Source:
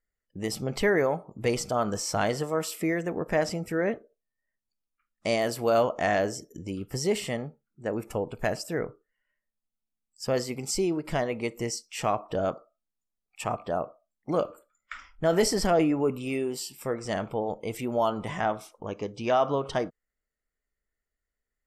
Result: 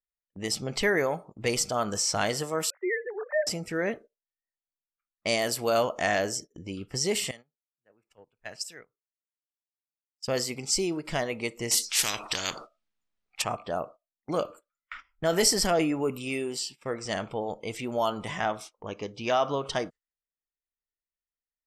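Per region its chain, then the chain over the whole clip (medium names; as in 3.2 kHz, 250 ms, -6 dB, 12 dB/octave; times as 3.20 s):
2.70–3.47 s: formants replaced by sine waves + Chebyshev band-pass 340–2000 Hz, order 5
7.31–10.28 s: pre-emphasis filter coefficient 0.9 + three bands expanded up and down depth 70%
11.71–13.42 s: treble shelf 3.2 kHz +7 dB + spectrum-flattening compressor 4:1
whole clip: gate -43 dBFS, range -15 dB; level-controlled noise filter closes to 2 kHz, open at -24 dBFS; treble shelf 2.1 kHz +11 dB; trim -3 dB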